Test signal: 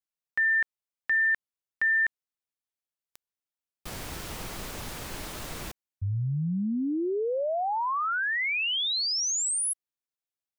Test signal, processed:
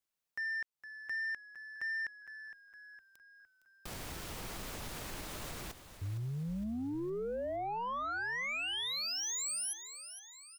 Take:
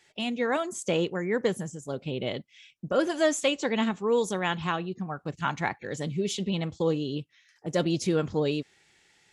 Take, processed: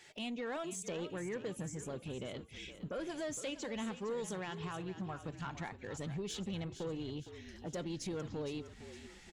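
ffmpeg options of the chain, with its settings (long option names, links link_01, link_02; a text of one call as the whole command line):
ffmpeg -i in.wav -filter_complex "[0:a]acompressor=threshold=-42dB:ratio=3:attack=0.11:release=185:detection=rms,asoftclip=type=tanh:threshold=-37dB,asplit=2[link_01][link_02];[link_02]asplit=5[link_03][link_04][link_05][link_06][link_07];[link_03]adelay=461,afreqshift=-53,volume=-12dB[link_08];[link_04]adelay=922,afreqshift=-106,volume=-17.8dB[link_09];[link_05]adelay=1383,afreqshift=-159,volume=-23.7dB[link_10];[link_06]adelay=1844,afreqshift=-212,volume=-29.5dB[link_11];[link_07]adelay=2305,afreqshift=-265,volume=-35.4dB[link_12];[link_08][link_09][link_10][link_11][link_12]amix=inputs=5:normalize=0[link_13];[link_01][link_13]amix=inputs=2:normalize=0,volume=4dB" out.wav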